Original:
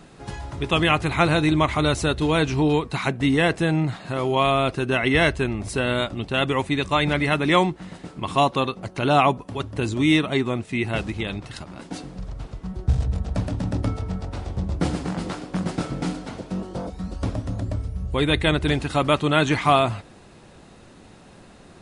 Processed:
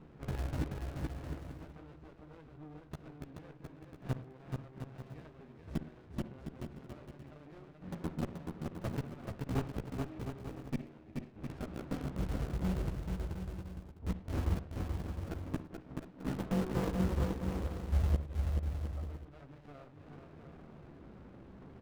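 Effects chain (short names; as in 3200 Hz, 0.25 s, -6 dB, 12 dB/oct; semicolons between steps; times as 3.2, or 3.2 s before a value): LPF 1600 Hz 12 dB/oct; flipped gate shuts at -19 dBFS, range -27 dB; in parallel at -4 dB: bit-crush 5-bit; on the sum: chorus voices 2, 0.37 Hz, delay 14 ms, depth 1.7 ms; bouncing-ball echo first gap 0.43 s, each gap 0.65×, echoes 5; on a send at -12 dB: reverb, pre-delay 53 ms; on the sum: running maximum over 33 samples; gain -3.5 dB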